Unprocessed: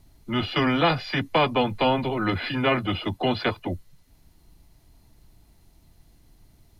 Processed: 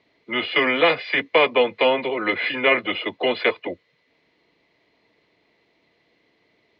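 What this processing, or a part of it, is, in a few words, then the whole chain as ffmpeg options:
phone earpiece: -af "highpass=410,equalizer=f=470:t=q:w=4:g=8,equalizer=f=800:t=q:w=4:g=-7,equalizer=f=1400:t=q:w=4:g=-6,equalizer=f=2100:t=q:w=4:g=9,lowpass=f=3800:w=0.5412,lowpass=f=3800:w=1.3066,volume=1.58"

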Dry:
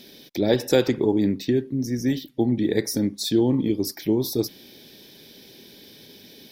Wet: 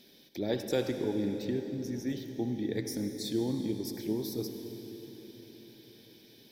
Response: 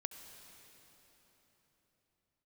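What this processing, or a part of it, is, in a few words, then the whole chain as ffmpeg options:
cathedral: -filter_complex "[1:a]atrim=start_sample=2205[s0];[0:a][s0]afir=irnorm=-1:irlink=0,volume=0.376"

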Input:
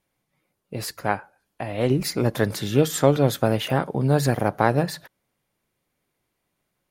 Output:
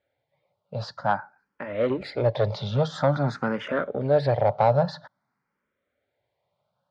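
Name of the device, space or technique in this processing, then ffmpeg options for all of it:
barber-pole phaser into a guitar amplifier: -filter_complex "[0:a]asplit=2[s0][s1];[s1]afreqshift=0.5[s2];[s0][s2]amix=inputs=2:normalize=1,asoftclip=type=tanh:threshold=0.15,highpass=84,equalizer=f=110:t=q:w=4:g=4,equalizer=f=330:t=q:w=4:g=-8,equalizer=f=590:t=q:w=4:g=10,equalizer=f=880:t=q:w=4:g=6,equalizer=f=1400:t=q:w=4:g=6,equalizer=f=2700:t=q:w=4:g=-7,lowpass=f=4400:w=0.5412,lowpass=f=4400:w=1.3066"

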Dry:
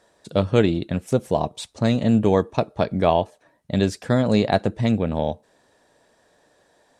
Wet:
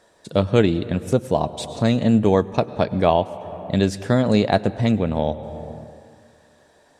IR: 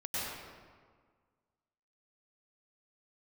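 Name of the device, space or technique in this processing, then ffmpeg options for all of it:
ducked reverb: -filter_complex "[0:a]asplit=3[s0][s1][s2];[1:a]atrim=start_sample=2205[s3];[s1][s3]afir=irnorm=-1:irlink=0[s4];[s2]apad=whole_len=308445[s5];[s4][s5]sidechaincompress=threshold=0.0316:ratio=10:attack=31:release=468,volume=0.398[s6];[s0][s6]amix=inputs=2:normalize=0,volume=1.12"

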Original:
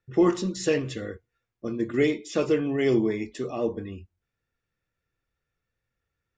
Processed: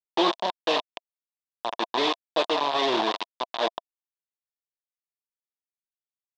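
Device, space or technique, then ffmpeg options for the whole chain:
hand-held game console: -af "acrusher=bits=3:mix=0:aa=0.000001,highpass=440,equalizer=f=450:t=q:w=4:g=-4,equalizer=f=680:t=q:w=4:g=9,equalizer=f=990:t=q:w=4:g=9,equalizer=f=1400:t=q:w=4:g=-6,equalizer=f=2100:t=q:w=4:g=-6,equalizer=f=3600:t=q:w=4:g=9,lowpass=f=4700:w=0.5412,lowpass=f=4700:w=1.3066"

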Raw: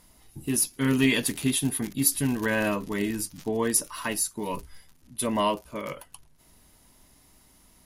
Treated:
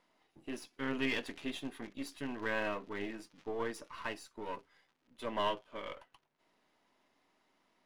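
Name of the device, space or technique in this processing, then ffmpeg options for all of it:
crystal radio: -filter_complex "[0:a]highpass=350,lowpass=2900,aeval=exprs='if(lt(val(0),0),0.447*val(0),val(0))':c=same,asettb=1/sr,asplit=3[s0][s1][s2];[s0]atrim=end=5.294[s3];[s1]atrim=start=5.29:end=5.94,asetpts=PTS-STARTPTS,afade=t=in:d=0.004:c=qsin,afade=t=out:st=0.646:d=0.004:c=qsin,equalizer=f=3200:w=7.1:g=11.5[s4];[s2]atrim=start=5.936[s5];[s3][s4]acrossfade=d=0.004:c1=hsin:c2=qsin[s6];[s6][s5]acrossfade=d=0.004:c1=qsin:c2=hsin,volume=0.531"

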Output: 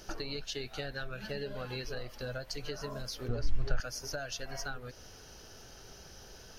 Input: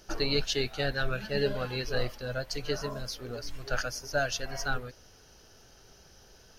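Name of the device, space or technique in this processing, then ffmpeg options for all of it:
serial compression, leveller first: -filter_complex "[0:a]acompressor=threshold=0.0282:ratio=2,acompressor=threshold=0.00891:ratio=5,asettb=1/sr,asplit=3[s0][s1][s2];[s0]atrim=end=3.284[s3];[s1]atrim=start=3.28:end=3.8,asetpts=PTS-STARTPTS,afade=t=in:d=0.004:c=qsin,afade=t=out:st=0.516:d=0.004:c=qsin,aemphasis=mode=reproduction:type=bsi[s4];[s2]atrim=start=3.796[s5];[s3][s4]acrossfade=d=0.004:c1=hsin:c2=qsin[s6];[s6][s5]acrossfade=d=0.004:c1=qsin:c2=hsin,volume=1.68"

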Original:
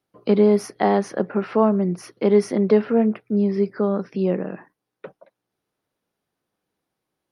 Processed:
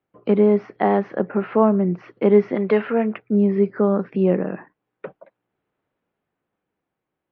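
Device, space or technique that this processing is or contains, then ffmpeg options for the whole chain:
action camera in a waterproof case: -filter_complex "[0:a]acrossover=split=7900[s0][s1];[s1]acompressor=threshold=0.00251:ratio=4:attack=1:release=60[s2];[s0][s2]amix=inputs=2:normalize=0,asettb=1/sr,asplit=3[s3][s4][s5];[s3]atrim=end=2.554[s6];[s4]atrim=start=2.55:end=3.18,asetpts=PTS-STARTPTS,afade=t=in:d=0.004:c=qsin,afade=t=out:st=0.626:d=0.004:c=qsin,tiltshelf=f=790:g=-7[s7];[s5]atrim=start=3.176[s8];[s6][s7]acrossfade=d=0.004:c1=hsin:c2=qsin[s9];[s9][s8]acrossfade=d=0.004:c1=qsin:c2=hsin,lowpass=f=2800:w=0.5412,lowpass=f=2800:w=1.3066,dynaudnorm=f=320:g=9:m=1.58" -ar 16000 -c:a aac -b:a 48k

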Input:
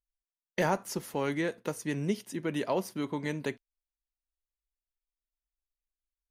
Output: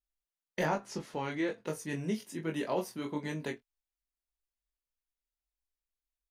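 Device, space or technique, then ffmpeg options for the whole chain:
double-tracked vocal: -filter_complex "[0:a]asettb=1/sr,asplit=3[s0][s1][s2];[s0]atrim=end=0.634[s3];[s1]atrim=start=0.63:end=1.67,asetpts=PTS-STARTPTS,afade=t=in:d=0.004:c=qsin,afade=t=out:st=1.036:d=0.004:c=qsin,lowpass=6000[s4];[s2]atrim=start=1.666[s5];[s3][s4]acrossfade=d=0.004:c1=hsin:c2=qsin[s6];[s6][s5]acrossfade=d=0.004:c1=qsin:c2=hsin,asplit=2[s7][s8];[s8]adelay=24,volume=0.316[s9];[s7][s9]amix=inputs=2:normalize=0,flanger=delay=19:depth=3.9:speed=1.2"

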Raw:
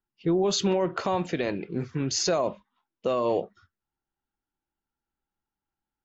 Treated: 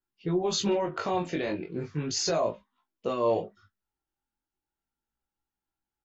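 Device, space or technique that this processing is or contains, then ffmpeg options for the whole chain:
double-tracked vocal: -filter_complex "[0:a]asplit=2[s0][s1];[s1]adelay=19,volume=0.447[s2];[s0][s2]amix=inputs=2:normalize=0,flanger=delay=16:depth=6.4:speed=0.35"

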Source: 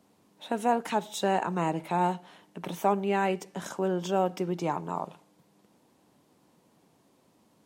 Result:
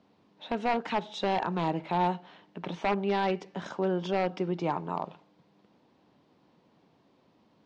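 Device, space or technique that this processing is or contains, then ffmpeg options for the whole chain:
synthesiser wavefolder: -af "aeval=exprs='0.112*(abs(mod(val(0)/0.112+3,4)-2)-1)':c=same,lowpass=f=4700:w=0.5412,lowpass=f=4700:w=1.3066"

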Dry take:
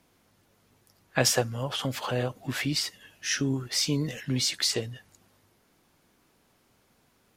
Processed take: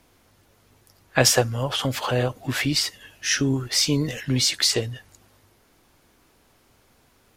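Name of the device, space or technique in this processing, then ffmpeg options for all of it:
low shelf boost with a cut just above: -af "lowshelf=f=72:g=7.5,equalizer=f=180:t=o:w=0.68:g=-5.5,volume=2"

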